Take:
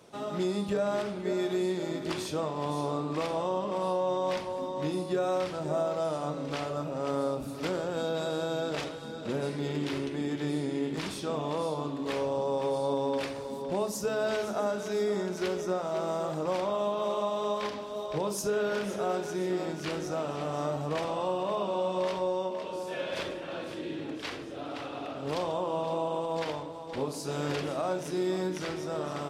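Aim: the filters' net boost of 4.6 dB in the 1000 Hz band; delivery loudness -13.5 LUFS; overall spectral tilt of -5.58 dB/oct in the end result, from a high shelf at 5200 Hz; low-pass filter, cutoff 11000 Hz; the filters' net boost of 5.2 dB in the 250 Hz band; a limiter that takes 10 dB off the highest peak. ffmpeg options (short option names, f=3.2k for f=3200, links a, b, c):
-af "lowpass=11k,equalizer=f=250:t=o:g=7,equalizer=f=1k:t=o:g=5.5,highshelf=f=5.2k:g=-7,volume=20dB,alimiter=limit=-5dB:level=0:latency=1"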